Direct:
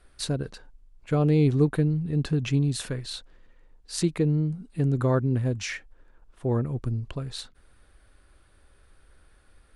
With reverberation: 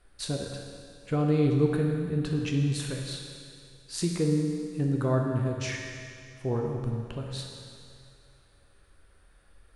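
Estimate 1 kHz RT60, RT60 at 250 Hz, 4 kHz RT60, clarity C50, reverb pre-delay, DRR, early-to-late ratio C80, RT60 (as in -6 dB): 2.3 s, 2.3 s, 2.3 s, 2.0 dB, 11 ms, 0.0 dB, 3.5 dB, 2.3 s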